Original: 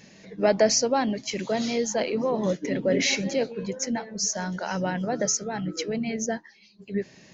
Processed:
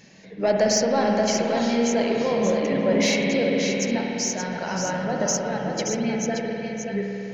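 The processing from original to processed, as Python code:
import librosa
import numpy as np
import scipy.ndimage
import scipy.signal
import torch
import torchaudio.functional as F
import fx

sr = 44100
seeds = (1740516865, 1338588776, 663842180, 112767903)

p1 = x + fx.echo_single(x, sr, ms=576, db=-6.0, dry=0)
p2 = 10.0 ** (-11.0 / 20.0) * np.tanh(p1 / 10.0 ** (-11.0 / 20.0))
y = fx.rev_spring(p2, sr, rt60_s=3.6, pass_ms=(51,), chirp_ms=70, drr_db=0.0)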